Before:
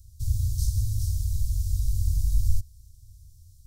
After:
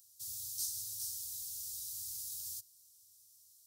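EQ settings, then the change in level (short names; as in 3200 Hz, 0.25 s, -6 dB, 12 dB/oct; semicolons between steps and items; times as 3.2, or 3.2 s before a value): resonant high-pass 810 Hz, resonance Q 1.6; high shelf 10000 Hz +8.5 dB; -1.5 dB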